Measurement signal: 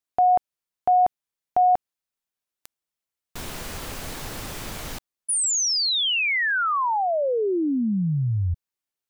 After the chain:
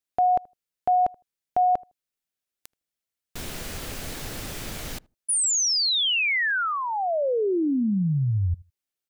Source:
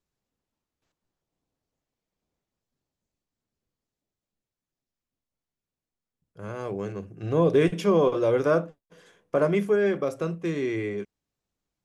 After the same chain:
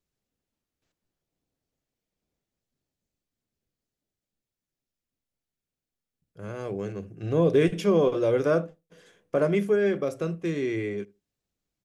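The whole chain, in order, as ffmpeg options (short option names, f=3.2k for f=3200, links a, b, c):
-filter_complex "[0:a]equalizer=f=1k:w=1.8:g=-5.5,asplit=2[a][b];[b]adelay=79,lowpass=f=820:p=1,volume=-22dB,asplit=2[c][d];[d]adelay=79,lowpass=f=820:p=1,volume=0.17[e];[c][e]amix=inputs=2:normalize=0[f];[a][f]amix=inputs=2:normalize=0"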